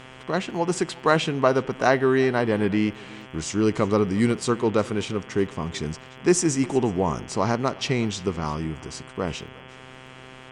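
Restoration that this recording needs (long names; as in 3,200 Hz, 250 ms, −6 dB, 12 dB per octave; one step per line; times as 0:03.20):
click removal
hum removal 129.7 Hz, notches 26
echo removal 360 ms −22 dB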